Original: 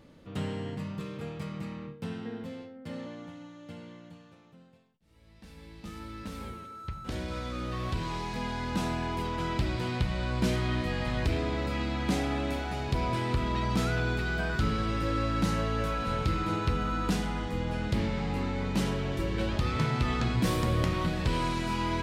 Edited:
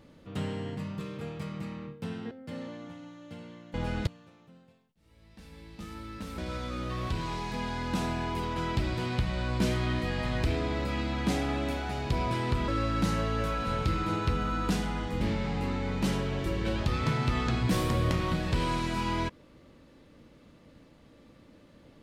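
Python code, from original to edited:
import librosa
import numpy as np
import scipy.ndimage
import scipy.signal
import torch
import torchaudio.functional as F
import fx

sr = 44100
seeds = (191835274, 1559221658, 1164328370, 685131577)

y = fx.edit(x, sr, fx.cut(start_s=2.31, length_s=0.38),
    fx.cut(start_s=6.43, length_s=0.77),
    fx.cut(start_s=13.5, length_s=1.58),
    fx.move(start_s=17.61, length_s=0.33, to_s=4.12), tone=tone)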